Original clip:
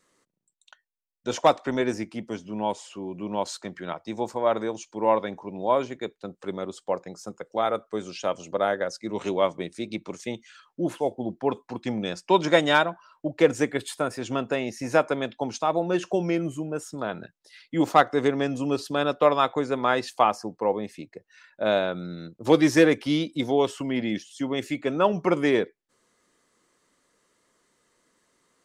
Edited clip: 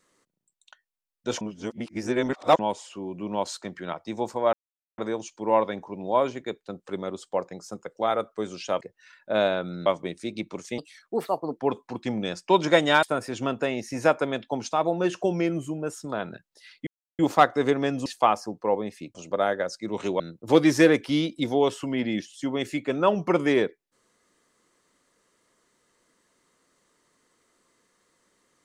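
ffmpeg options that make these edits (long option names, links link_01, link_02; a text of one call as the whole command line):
ffmpeg -i in.wav -filter_complex "[0:a]asplit=13[link_01][link_02][link_03][link_04][link_05][link_06][link_07][link_08][link_09][link_10][link_11][link_12][link_13];[link_01]atrim=end=1.412[link_14];[link_02]atrim=start=1.408:end=2.592,asetpts=PTS-STARTPTS,areverse[link_15];[link_03]atrim=start=2.588:end=4.53,asetpts=PTS-STARTPTS,afade=type=out:start_time=1.938:duration=0.004:curve=hsin,apad=pad_dur=0.45[link_16];[link_04]atrim=start=4.53:end=8.362,asetpts=PTS-STARTPTS,afade=type=in:duration=0.004:curve=hsin[link_17];[link_05]atrim=start=21.118:end=22.172[link_18];[link_06]atrim=start=9.408:end=10.334[link_19];[link_07]atrim=start=10.33:end=11.37,asetpts=PTS-STARTPTS,asetrate=58212,aresample=44100,atrim=end_sample=34745,asetpts=PTS-STARTPTS[link_20];[link_08]atrim=start=11.366:end=12.832[link_21];[link_09]atrim=start=13.918:end=17.76,asetpts=PTS-STARTPTS,afade=type=out:start_time=3.838:duration=0.004:curve=hsin,apad=pad_dur=0.32[link_22];[link_10]atrim=start=17.76:end=18.632,asetpts=PTS-STARTPTS,afade=type=in:duration=0.004:curve=hsin[link_23];[link_11]atrim=start=20.028:end=21.122[link_24];[link_12]atrim=start=8.358:end=9.412[link_25];[link_13]atrim=start=22.168[link_26];[link_14][link_15]acrossfade=duration=0.004:curve1=hsin:curve2=hsin[link_27];[link_16][link_17]concat=n=2:v=0:a=1[link_28];[link_27][link_28]acrossfade=duration=0.004:curve1=hsin:curve2=hsin[link_29];[link_29][link_18]acrossfade=duration=0.004:curve1=hsin:curve2=hsin[link_30];[link_30][link_19]acrossfade=duration=0.004:curve1=hsin:curve2=hsin[link_31];[link_31][link_20]acrossfade=duration=0.004:curve1=hsin:curve2=hsin[link_32];[link_32][link_21]acrossfade=duration=0.004:curve1=hsin:curve2=hsin[link_33];[link_22][link_23]concat=n=2:v=0:a=1[link_34];[link_33][link_34]acrossfade=duration=0.004:curve1=hsin:curve2=hsin[link_35];[link_35][link_24]acrossfade=duration=0.004:curve1=hsin:curve2=hsin[link_36];[link_36][link_25]acrossfade=duration=0.004:curve1=hsin:curve2=hsin[link_37];[link_37][link_26]acrossfade=duration=0.004:curve1=hsin:curve2=hsin" out.wav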